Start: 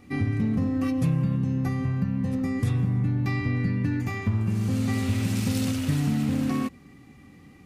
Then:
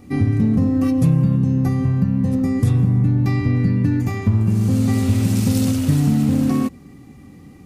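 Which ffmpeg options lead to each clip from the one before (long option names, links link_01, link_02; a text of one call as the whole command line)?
ffmpeg -i in.wav -af "equalizer=frequency=2200:width=0.56:gain=-8,volume=8.5dB" out.wav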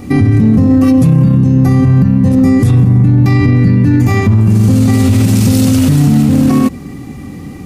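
ffmpeg -i in.wav -af "alimiter=level_in=16.5dB:limit=-1dB:release=50:level=0:latency=1,volume=-1dB" out.wav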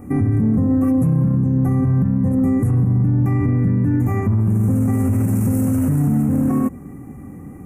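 ffmpeg -i in.wav -af "asuperstop=centerf=4000:order=4:qfactor=0.54,volume=-8.5dB" out.wav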